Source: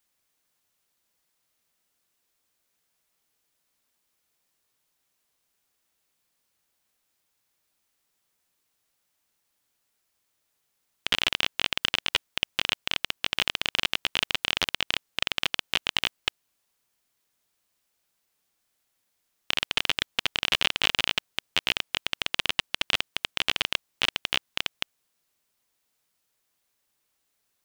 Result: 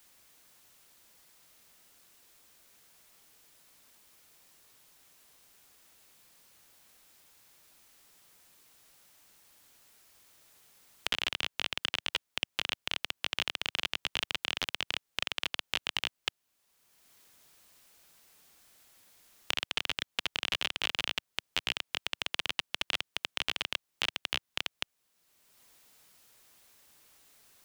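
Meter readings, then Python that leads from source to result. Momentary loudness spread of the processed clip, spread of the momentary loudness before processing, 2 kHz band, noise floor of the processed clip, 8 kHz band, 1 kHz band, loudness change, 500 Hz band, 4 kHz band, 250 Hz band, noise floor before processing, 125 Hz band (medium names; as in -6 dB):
4 LU, 6 LU, -6.5 dB, -82 dBFS, -5.5 dB, -6.5 dB, -6.5 dB, -6.5 dB, -6.5 dB, -7.0 dB, -76 dBFS, -7.5 dB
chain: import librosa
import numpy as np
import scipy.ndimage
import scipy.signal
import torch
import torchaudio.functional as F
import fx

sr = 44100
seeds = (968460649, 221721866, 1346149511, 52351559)

y = fx.band_squash(x, sr, depth_pct=70)
y = y * 10.0 ** (-7.0 / 20.0)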